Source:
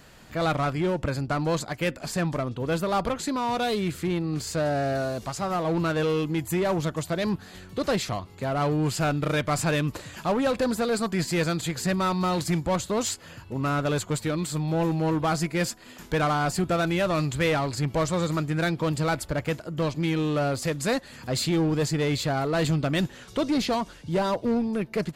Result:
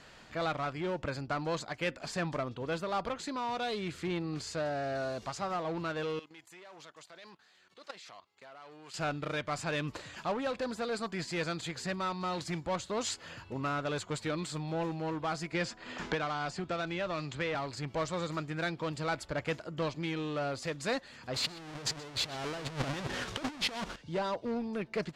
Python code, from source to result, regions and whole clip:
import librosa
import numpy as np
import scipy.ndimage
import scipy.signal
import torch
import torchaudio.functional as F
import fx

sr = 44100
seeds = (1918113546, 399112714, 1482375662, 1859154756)

y = fx.chain(x, sr, fx.highpass(hz=1100.0, slope=6),
    fx.level_steps(step_db=14), at=(6.19, 8.94))
y = fx.chain(y, sr, fx.lowpass(hz=7000.0, slope=12),
    fx.band_squash(depth_pct=100), at=(15.52, 17.55))
y = fx.chain(y, sr, fx.halfwave_hold(),
    fx.over_compress(threshold_db=-27.0, ratio=-0.5),
    fx.echo_single(ms=125, db=-19.5), at=(21.34, 23.96))
y = scipy.signal.sosfilt(scipy.signal.butter(2, 6000.0, 'lowpass', fs=sr, output='sos'), y)
y = fx.low_shelf(y, sr, hz=340.0, db=-8.0)
y = fx.rider(y, sr, range_db=10, speed_s=0.5)
y = F.gain(torch.from_numpy(y), -6.0).numpy()